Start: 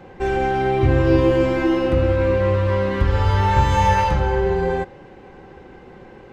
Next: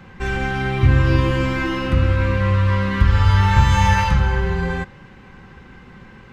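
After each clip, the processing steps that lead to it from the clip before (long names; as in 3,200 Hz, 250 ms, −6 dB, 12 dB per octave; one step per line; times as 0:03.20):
flat-topped bell 500 Hz −12 dB
level +4 dB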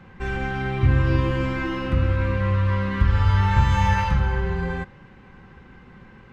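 high-shelf EQ 3,900 Hz −8 dB
level −4 dB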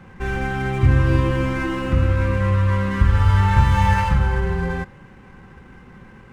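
running median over 9 samples
level +3 dB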